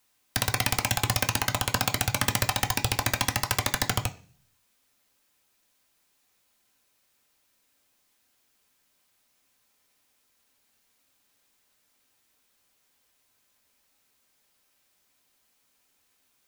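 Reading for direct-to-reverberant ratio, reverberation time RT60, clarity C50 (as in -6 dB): 5.0 dB, 0.45 s, 17.0 dB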